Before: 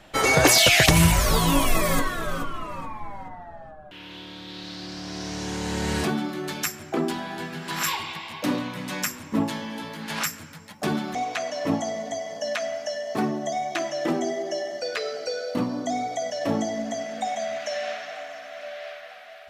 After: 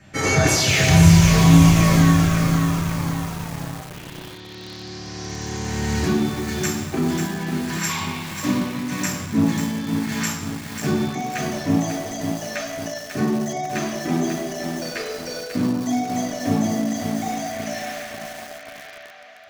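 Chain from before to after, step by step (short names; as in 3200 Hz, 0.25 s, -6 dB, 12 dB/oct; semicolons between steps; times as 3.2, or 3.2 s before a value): limiter -11 dBFS, peak gain reduction 6 dB; reverb RT60 1.1 s, pre-delay 3 ms, DRR -1.5 dB; lo-fi delay 0.543 s, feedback 55%, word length 4-bit, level -5.5 dB; gain -8 dB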